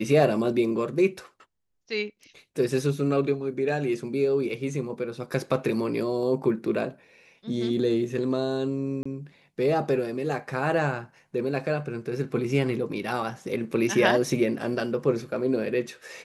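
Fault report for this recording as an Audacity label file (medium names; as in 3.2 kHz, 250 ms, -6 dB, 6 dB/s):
9.030000	9.050000	dropout 25 ms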